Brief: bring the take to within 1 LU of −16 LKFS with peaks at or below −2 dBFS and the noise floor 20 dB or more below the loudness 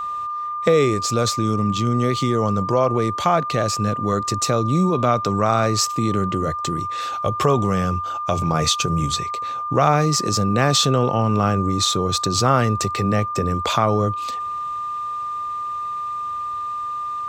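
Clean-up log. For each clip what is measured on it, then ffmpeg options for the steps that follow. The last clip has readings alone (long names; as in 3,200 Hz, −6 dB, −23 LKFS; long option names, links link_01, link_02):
interfering tone 1,200 Hz; level of the tone −24 dBFS; integrated loudness −20.5 LKFS; sample peak −3.0 dBFS; target loudness −16.0 LKFS
→ -af "bandreject=frequency=1200:width=30"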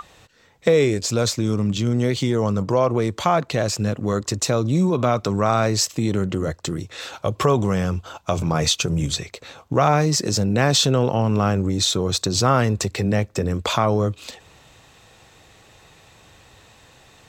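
interfering tone none found; integrated loudness −21.0 LKFS; sample peak −3.5 dBFS; target loudness −16.0 LKFS
→ -af "volume=5dB,alimiter=limit=-2dB:level=0:latency=1"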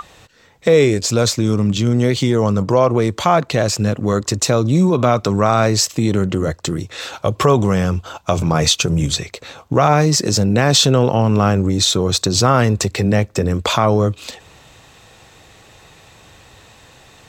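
integrated loudness −16.0 LKFS; sample peak −2.0 dBFS; background noise floor −47 dBFS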